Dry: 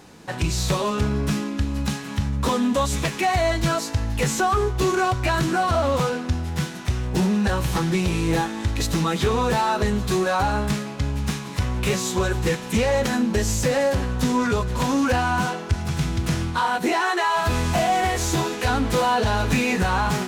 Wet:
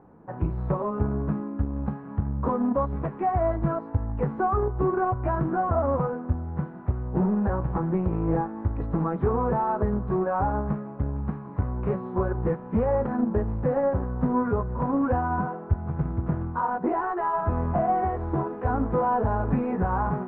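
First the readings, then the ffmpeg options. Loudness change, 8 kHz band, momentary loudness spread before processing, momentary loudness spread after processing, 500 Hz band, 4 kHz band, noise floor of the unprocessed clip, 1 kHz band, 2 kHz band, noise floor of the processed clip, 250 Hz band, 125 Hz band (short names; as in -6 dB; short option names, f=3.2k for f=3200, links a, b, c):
-4.0 dB, under -40 dB, 5 LU, 6 LU, -3.0 dB, under -35 dB, -33 dBFS, -3.5 dB, -13.5 dB, -39 dBFS, -3.0 dB, -3.0 dB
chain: -filter_complex "[0:a]asplit=2[a][b];[b]acrusher=bits=2:mix=0:aa=0.5,volume=-7dB[c];[a][c]amix=inputs=2:normalize=0,lowpass=f=1.2k:w=0.5412,lowpass=f=1.2k:w=1.3066,volume=-5dB"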